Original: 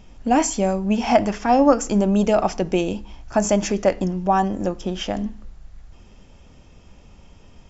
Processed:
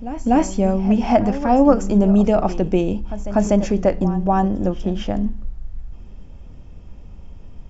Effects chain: tilt EQ -2.5 dB/octave; on a send: reverse echo 245 ms -14 dB; on the sum: trim -1.5 dB

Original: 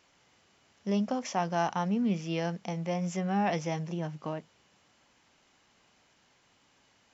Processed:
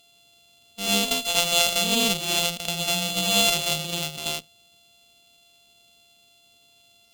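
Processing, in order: sorted samples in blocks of 64 samples; resonant high shelf 2.3 kHz +9 dB, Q 3; Chebyshev shaper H 4 -12 dB, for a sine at -4 dBFS; reverse echo 83 ms -6 dB

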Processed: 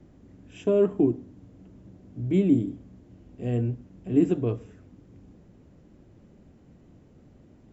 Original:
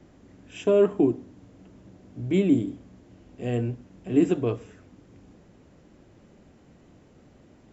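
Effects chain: bass shelf 410 Hz +10 dB; trim -7 dB

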